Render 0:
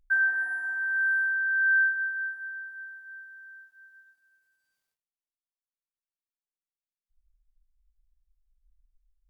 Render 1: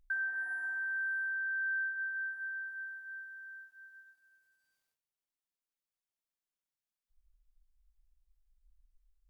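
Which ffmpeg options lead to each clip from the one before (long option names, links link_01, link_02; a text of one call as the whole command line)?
ffmpeg -i in.wav -af "acompressor=threshold=-36dB:ratio=3,volume=-1dB" out.wav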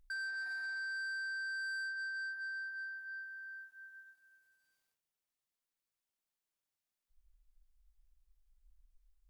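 ffmpeg -i in.wav -af "asoftclip=type=tanh:threshold=-39dB,volume=1dB" out.wav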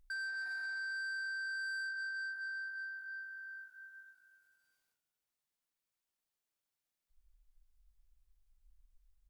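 ffmpeg -i in.wav -filter_complex "[0:a]asplit=4[link_01][link_02][link_03][link_04];[link_02]adelay=203,afreqshift=-49,volume=-18.5dB[link_05];[link_03]adelay=406,afreqshift=-98,volume=-26.9dB[link_06];[link_04]adelay=609,afreqshift=-147,volume=-35.3dB[link_07];[link_01][link_05][link_06][link_07]amix=inputs=4:normalize=0" out.wav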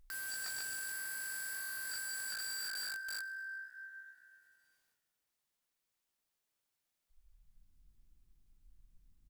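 ffmpeg -i in.wav -filter_complex "[0:a]aeval=exprs='(mod(119*val(0)+1,2)-1)/119':channel_layout=same,asplit=6[link_01][link_02][link_03][link_04][link_05][link_06];[link_02]adelay=129,afreqshift=71,volume=-20.5dB[link_07];[link_03]adelay=258,afreqshift=142,volume=-25.1dB[link_08];[link_04]adelay=387,afreqshift=213,volume=-29.7dB[link_09];[link_05]adelay=516,afreqshift=284,volume=-34.2dB[link_10];[link_06]adelay=645,afreqshift=355,volume=-38.8dB[link_11];[link_01][link_07][link_08][link_09][link_10][link_11]amix=inputs=6:normalize=0,volume=3.5dB" out.wav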